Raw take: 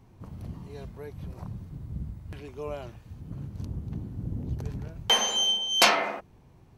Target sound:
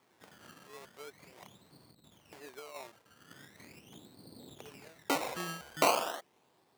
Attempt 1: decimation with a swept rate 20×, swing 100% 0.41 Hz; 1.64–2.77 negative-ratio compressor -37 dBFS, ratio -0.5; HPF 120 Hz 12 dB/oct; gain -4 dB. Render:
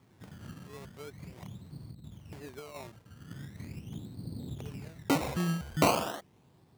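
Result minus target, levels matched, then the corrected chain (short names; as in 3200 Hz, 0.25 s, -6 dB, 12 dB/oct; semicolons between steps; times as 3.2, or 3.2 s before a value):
125 Hz band +17.0 dB
decimation with a swept rate 20×, swing 100% 0.41 Hz; 1.64–2.77 negative-ratio compressor -37 dBFS, ratio -0.5; HPF 450 Hz 12 dB/oct; gain -4 dB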